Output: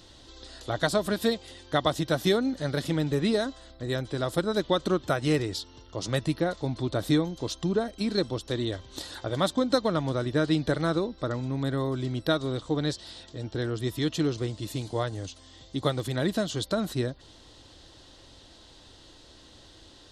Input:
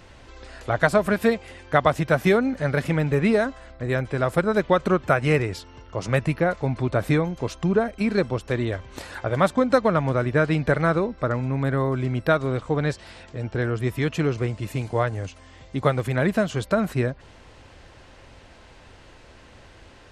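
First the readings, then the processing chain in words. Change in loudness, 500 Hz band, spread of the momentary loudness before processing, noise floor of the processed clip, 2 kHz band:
-5.5 dB, -6.0 dB, 10 LU, -53 dBFS, -9.0 dB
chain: resonant high shelf 2.9 kHz +7.5 dB, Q 3; small resonant body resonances 310/1900 Hz, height 8 dB; trim -6.5 dB

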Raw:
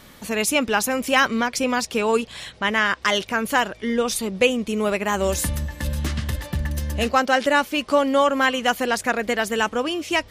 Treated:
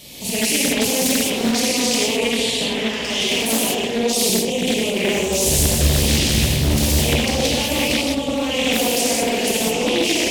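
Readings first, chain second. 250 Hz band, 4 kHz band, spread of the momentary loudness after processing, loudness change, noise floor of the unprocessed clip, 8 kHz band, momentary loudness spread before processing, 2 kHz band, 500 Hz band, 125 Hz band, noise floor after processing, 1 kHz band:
+4.5 dB, +8.5 dB, 4 LU, +4.0 dB, -47 dBFS, +10.5 dB, 8 LU, -1.5 dB, +1.5 dB, +7.5 dB, -24 dBFS, -5.0 dB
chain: chunks repeated in reverse 131 ms, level -13 dB; treble shelf 2.7 kHz +5 dB; level held to a coarse grid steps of 14 dB; high-pass 90 Hz 6 dB/octave; compressor with a negative ratio -32 dBFS, ratio -0.5; overload inside the chain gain 24.5 dB; FFT filter 630 Hz 0 dB, 1.5 kHz -19 dB, 2.5 kHz +4 dB; bucket-brigade echo 385 ms, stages 2048, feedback 59%, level -8 dB; gated-style reverb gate 240 ms flat, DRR -8 dB; loudspeaker Doppler distortion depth 0.96 ms; trim +6 dB

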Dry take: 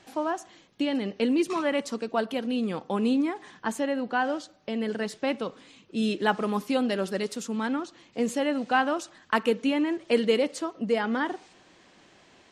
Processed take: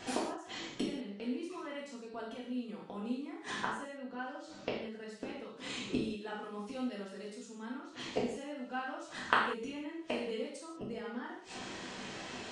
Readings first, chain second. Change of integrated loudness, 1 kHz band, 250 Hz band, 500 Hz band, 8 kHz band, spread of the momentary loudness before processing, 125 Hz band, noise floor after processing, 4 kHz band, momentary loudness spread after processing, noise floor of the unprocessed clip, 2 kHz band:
-12.0 dB, -9.5 dB, -12.5 dB, -13.0 dB, -8.0 dB, 8 LU, -9.5 dB, -51 dBFS, -8.0 dB, 8 LU, -58 dBFS, -8.5 dB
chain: resampled via 22.05 kHz; inverted gate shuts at -28 dBFS, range -28 dB; gated-style reverb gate 220 ms falling, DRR -6 dB; trim +5.5 dB

